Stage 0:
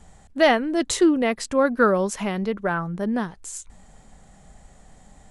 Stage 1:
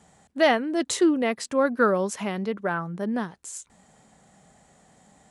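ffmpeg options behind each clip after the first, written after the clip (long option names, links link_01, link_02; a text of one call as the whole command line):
ffmpeg -i in.wav -af "highpass=140,volume=-2.5dB" out.wav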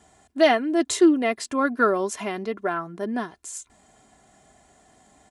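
ffmpeg -i in.wav -af "aecho=1:1:2.9:0.59" out.wav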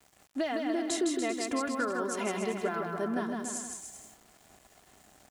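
ffmpeg -i in.wav -filter_complex "[0:a]acompressor=threshold=-27dB:ratio=12,asplit=2[link_01][link_02];[link_02]aecho=0:1:160|288|390.4|472.3|537.9:0.631|0.398|0.251|0.158|0.1[link_03];[link_01][link_03]amix=inputs=2:normalize=0,aeval=exprs='val(0)*gte(abs(val(0)),0.00266)':channel_layout=same,volume=-2dB" out.wav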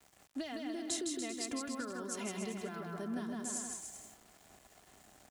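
ffmpeg -i in.wav -filter_complex "[0:a]acrossover=split=230|3000[link_01][link_02][link_03];[link_02]acompressor=threshold=-41dB:ratio=6[link_04];[link_01][link_04][link_03]amix=inputs=3:normalize=0,volume=-2dB" out.wav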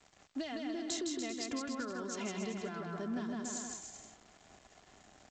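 ffmpeg -i in.wav -filter_complex "[0:a]asplit=2[link_01][link_02];[link_02]asoftclip=type=hard:threshold=-35.5dB,volume=-4.5dB[link_03];[link_01][link_03]amix=inputs=2:normalize=0,volume=-2.5dB" -ar 16000 -c:a g722 out.g722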